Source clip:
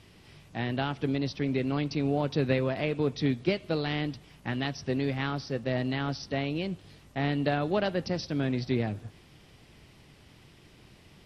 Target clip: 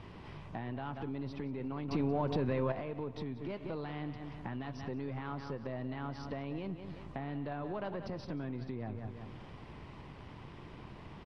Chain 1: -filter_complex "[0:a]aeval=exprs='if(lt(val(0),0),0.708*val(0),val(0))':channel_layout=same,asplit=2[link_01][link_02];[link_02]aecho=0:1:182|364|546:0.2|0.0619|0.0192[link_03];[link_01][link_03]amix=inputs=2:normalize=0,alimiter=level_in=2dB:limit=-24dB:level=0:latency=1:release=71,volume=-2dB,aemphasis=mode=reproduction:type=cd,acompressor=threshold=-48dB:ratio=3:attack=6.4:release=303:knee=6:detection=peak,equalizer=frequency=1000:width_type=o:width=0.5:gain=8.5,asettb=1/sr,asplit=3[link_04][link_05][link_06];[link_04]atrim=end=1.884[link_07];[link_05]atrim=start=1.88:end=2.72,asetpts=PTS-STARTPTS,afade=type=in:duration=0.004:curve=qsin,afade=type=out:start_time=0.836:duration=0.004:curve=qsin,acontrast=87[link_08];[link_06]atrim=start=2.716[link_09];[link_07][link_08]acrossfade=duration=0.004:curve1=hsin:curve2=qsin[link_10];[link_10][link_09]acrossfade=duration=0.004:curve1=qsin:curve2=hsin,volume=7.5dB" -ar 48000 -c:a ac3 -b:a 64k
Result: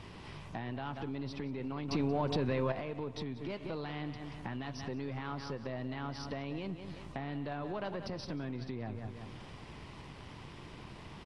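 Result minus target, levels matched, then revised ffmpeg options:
2,000 Hz band +3.0 dB
-filter_complex "[0:a]aeval=exprs='if(lt(val(0),0),0.708*val(0),val(0))':channel_layout=same,asplit=2[link_01][link_02];[link_02]aecho=0:1:182|364|546:0.2|0.0619|0.0192[link_03];[link_01][link_03]amix=inputs=2:normalize=0,alimiter=level_in=2dB:limit=-24dB:level=0:latency=1:release=71,volume=-2dB,aemphasis=mode=reproduction:type=cd,acompressor=threshold=-48dB:ratio=3:attack=6.4:release=303:knee=6:detection=peak,lowpass=frequency=2000:poles=1,equalizer=frequency=1000:width_type=o:width=0.5:gain=8.5,asettb=1/sr,asplit=3[link_04][link_05][link_06];[link_04]atrim=end=1.884[link_07];[link_05]atrim=start=1.88:end=2.72,asetpts=PTS-STARTPTS,afade=type=in:duration=0.004:curve=qsin,afade=type=out:start_time=0.836:duration=0.004:curve=qsin,acontrast=87[link_08];[link_06]atrim=start=2.716[link_09];[link_07][link_08]acrossfade=duration=0.004:curve1=hsin:curve2=qsin[link_10];[link_10][link_09]acrossfade=duration=0.004:curve1=qsin:curve2=hsin,volume=7.5dB" -ar 48000 -c:a ac3 -b:a 64k

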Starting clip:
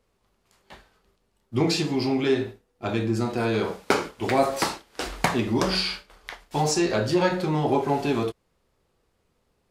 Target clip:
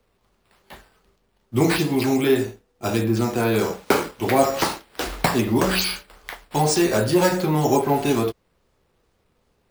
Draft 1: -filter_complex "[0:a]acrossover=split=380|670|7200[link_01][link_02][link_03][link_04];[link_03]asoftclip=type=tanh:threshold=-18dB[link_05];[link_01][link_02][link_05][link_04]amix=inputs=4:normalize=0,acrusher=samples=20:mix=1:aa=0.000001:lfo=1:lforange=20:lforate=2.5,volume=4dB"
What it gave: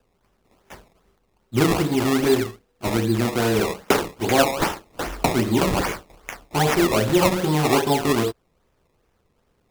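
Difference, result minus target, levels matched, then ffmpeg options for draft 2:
sample-and-hold swept by an LFO: distortion +9 dB
-filter_complex "[0:a]acrossover=split=380|670|7200[link_01][link_02][link_03][link_04];[link_03]asoftclip=type=tanh:threshold=-18dB[link_05];[link_01][link_02][link_05][link_04]amix=inputs=4:normalize=0,acrusher=samples=5:mix=1:aa=0.000001:lfo=1:lforange=5:lforate=2.5,volume=4dB"

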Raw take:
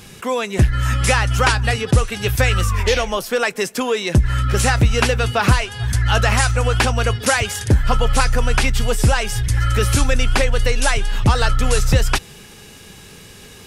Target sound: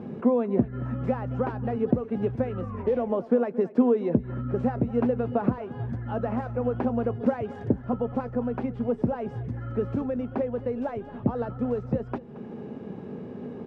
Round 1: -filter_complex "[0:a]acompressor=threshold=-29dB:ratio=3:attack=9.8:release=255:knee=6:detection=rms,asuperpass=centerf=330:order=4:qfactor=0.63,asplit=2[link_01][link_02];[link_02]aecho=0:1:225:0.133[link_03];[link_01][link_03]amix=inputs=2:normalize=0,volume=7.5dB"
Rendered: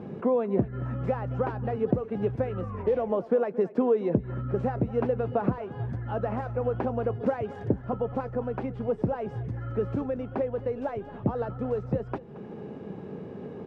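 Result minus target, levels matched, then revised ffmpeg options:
250 Hz band −3.0 dB
-filter_complex "[0:a]acompressor=threshold=-29dB:ratio=3:attack=9.8:release=255:knee=6:detection=rms,asuperpass=centerf=330:order=4:qfactor=0.63,equalizer=frequency=240:width=7.6:gain=9,asplit=2[link_01][link_02];[link_02]aecho=0:1:225:0.133[link_03];[link_01][link_03]amix=inputs=2:normalize=0,volume=7.5dB"

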